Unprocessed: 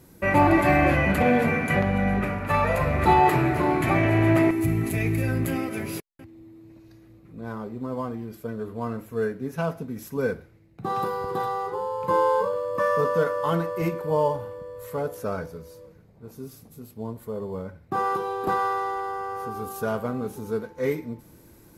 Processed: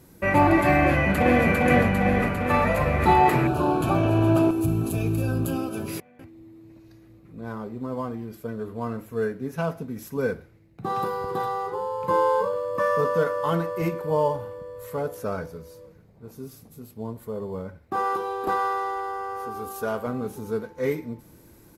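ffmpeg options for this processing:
-filter_complex "[0:a]asplit=2[a][b];[b]afade=t=in:st=0.85:d=0.01,afade=t=out:st=1.48:d=0.01,aecho=0:1:400|800|1200|1600|2000|2400|2800|3200|3600|4000|4400|4800:0.794328|0.55603|0.389221|0.272455|0.190718|0.133503|0.0934519|0.0654163|0.0457914|0.032054|0.0224378|0.0157065[c];[a][c]amix=inputs=2:normalize=0,asettb=1/sr,asplit=3[d][e][f];[d]atrim=end=3.474[g];[e]atrim=start=3.47:end=5.88,asetpts=PTS-STARTPTS,afade=t=in:d=0.004:c=qsin,afade=t=out:st=2.406:d=0.004:c=qsin,asuperstop=centerf=2000:order=4:qfactor=1.8[h];[f]atrim=start=5.876[i];[g][h]acrossfade=d=0.004:c1=hsin:c2=qsin[j];[j][i]acrossfade=d=0.004:c1=qsin:c2=hsin,asettb=1/sr,asplit=3[k][l][m];[k]atrim=end=17.784[n];[l]atrim=start=17.78:end=20.07,asetpts=PTS-STARTPTS,afade=t=in:d=0.004:c=qsin,afade=t=out:st=2.286:d=0.004:c=qsin,equalizer=f=140:t=o:w=0.77:g=-12[o];[m]atrim=start=20.066[p];[n][o]acrossfade=d=0.004:c1=hsin:c2=qsin[q];[q][p]acrossfade=d=0.004:c1=qsin:c2=hsin"

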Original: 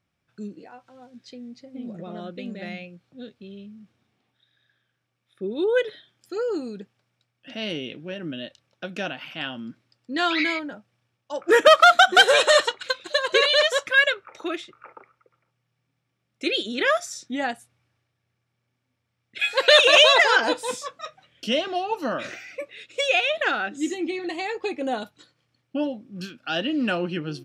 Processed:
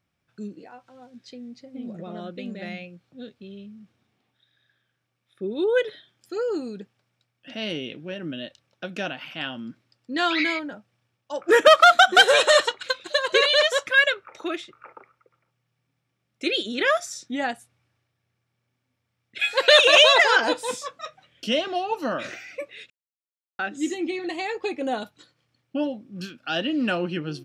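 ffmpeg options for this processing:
-filter_complex "[0:a]asplit=3[a][b][c];[a]atrim=end=22.9,asetpts=PTS-STARTPTS,afade=t=out:st=22.896:d=0.004:c=hsin[d];[b]atrim=start=22.9:end=23.59,asetpts=PTS-STARTPTS,volume=0[e];[c]atrim=start=23.59,asetpts=PTS-STARTPTS,afade=t=in:d=0.004:c=hsin[f];[d][e][f]concat=n=3:v=0:a=1"

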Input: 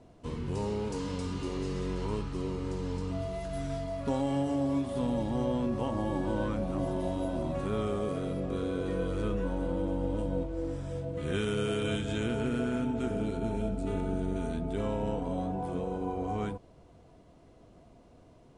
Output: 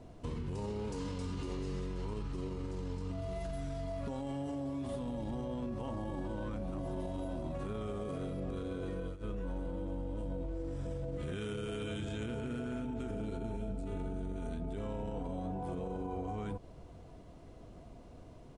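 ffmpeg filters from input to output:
-filter_complex "[0:a]asplit=2[a][b];[b]afade=t=in:st=10.38:d=0.01,afade=t=out:st=10.99:d=0.01,aecho=0:1:470|940|1410|1880|2350|2820|3290|3760|4230|4700|5170:0.501187|0.350831|0.245582|0.171907|0.120335|0.0842345|0.0589642|0.0412749|0.0288924|0.0202247|0.0141573[c];[a][c]amix=inputs=2:normalize=0,asplit=3[d][e][f];[d]atrim=end=9.17,asetpts=PTS-STARTPTS,afade=t=out:st=8.86:d=0.31:c=qsin:silence=0.0668344[g];[e]atrim=start=9.17:end=9.2,asetpts=PTS-STARTPTS,volume=-23.5dB[h];[f]atrim=start=9.2,asetpts=PTS-STARTPTS,afade=t=in:d=0.31:c=qsin:silence=0.0668344[i];[g][h][i]concat=n=3:v=0:a=1,lowshelf=f=82:g=7.5,alimiter=level_in=5dB:limit=-24dB:level=0:latency=1,volume=-5dB,acompressor=threshold=-37dB:ratio=6,volume=2dB"

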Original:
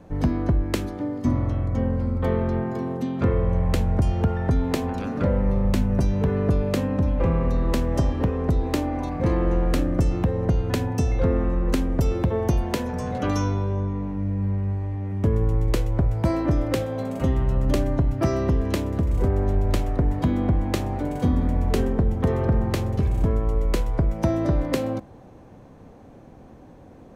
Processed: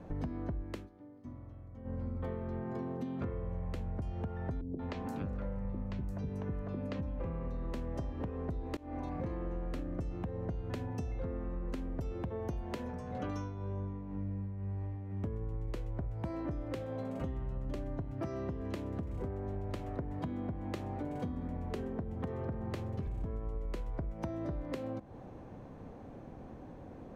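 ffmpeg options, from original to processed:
-filter_complex "[0:a]asettb=1/sr,asplit=3[a][b][c];[a]atrim=end=4.614[d];[b]atrim=start=4.61:end=7.01,asetpts=PTS-STARTPTS,afade=t=in:d=0.004:c=qsin,afade=t=out:st=2.396:d=0.004:c=qsin,acrossover=split=440|6000[e][f][g];[f]adelay=180[h];[g]adelay=350[i];[e][h][i]amix=inputs=3:normalize=0,atrim=end_sample=105840[j];[c]atrim=start=7.006[k];[d][j]acrossfade=d=0.004:c1=hsin:c2=qsin[l];[l][k]acrossfade=d=0.004:c1=qsin:c2=hsin,asettb=1/sr,asplit=3[m][n][o];[m]atrim=end=12.824[p];[n]atrim=start=12.82:end=15.27,asetpts=PTS-STARTPTS,afade=t=in:d=0.004:c=qsin,afade=t=out:st=2.446:d=0.004:c=qsin,tremolo=f=2:d=0.71[q];[o]atrim=start=15.266[r];[p][q]acrossfade=d=0.004:c1=hsin:c2=qsin[s];[s][r]acrossfade=d=0.004:c1=qsin:c2=hsin,asettb=1/sr,asplit=3[t][u][v];[t]atrim=end=18.024[w];[u]atrim=start=18.02:end=23.07,asetpts=PTS-STARTPTS,afade=t=in:d=0.004:c=qsin,afade=t=out:st=5.046:d=0.004:c=qsin,highpass=75[x];[v]atrim=start=23.066[y];[w][x]acrossfade=d=0.004:c1=hsin:c2=qsin[z];[z][y]acrossfade=d=0.004:c1=qsin:c2=hsin,asplit=4[aa][ab][ac][ad];[aa]atrim=end=0.89,asetpts=PTS-STARTPTS,afade=t=out:st=0.6:d=0.29:silence=0.0668344[ae];[ab]atrim=start=0.89:end=1.84,asetpts=PTS-STARTPTS,volume=-23.5dB[af];[ac]atrim=start=1.84:end=8.77,asetpts=PTS-STARTPTS,afade=t=in:d=0.29:silence=0.0668344,afade=t=out:st=6.926:d=0.004:c=hsin:silence=0.0891251[ag];[ad]atrim=start=8.77,asetpts=PTS-STARTPTS,afade=t=in:d=0.51:c=qsin:silence=0.0891251[ah];[ae][af][ag][ah]concat=n=4:v=0:a=1,highshelf=f=4.7k:g=-10,acompressor=threshold=-34dB:ratio=6,volume=-2dB"

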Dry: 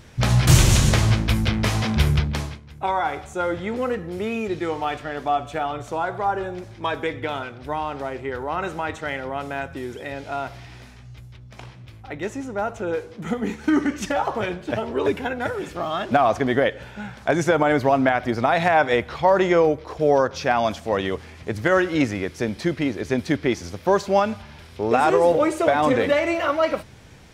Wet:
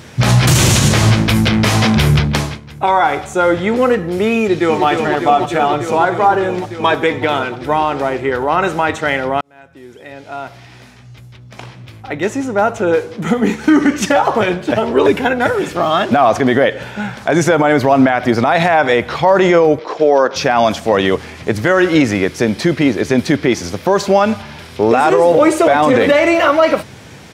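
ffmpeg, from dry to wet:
-filter_complex "[0:a]asplit=2[a][b];[b]afade=t=in:st=4.39:d=0.01,afade=t=out:st=4.85:d=0.01,aecho=0:1:300|600|900|1200|1500|1800|2100|2400|2700|3000|3300|3600:0.530884|0.451252|0.383564|0.326029|0.277125|0.235556|0.200223|0.170189|0.144661|0.122962|0.104518|0.0888399[c];[a][c]amix=inputs=2:normalize=0,asettb=1/sr,asplit=3[d][e][f];[d]atrim=end=19.794[g];[e]atrim=start=19.79:end=20.36,asetpts=PTS-STARTPTS,afade=t=in:d=0.004:c=qsin,afade=t=out:st=0.566:d=0.004:c=qsin,acrossover=split=220 7100:gain=0.0631 1 0.0794[h][i][j];[h][i][j]amix=inputs=3:normalize=0[k];[f]atrim=start=20.356[l];[g][k]acrossfade=d=0.004:c1=hsin:c2=qsin[m];[m][l]acrossfade=d=0.004:c1=qsin:c2=hsin,asplit=2[n][o];[n]atrim=end=9.41,asetpts=PTS-STARTPTS,afade=t=out:st=9.406:d=0.004:c=hsin[p];[o]atrim=start=9.41,asetpts=PTS-STARTPTS,afade=t=in:d=3.16[q];[p][q]concat=n=2:v=0:a=1,highpass=110,alimiter=level_in=13dB:limit=-1dB:release=50:level=0:latency=1,volume=-1dB"

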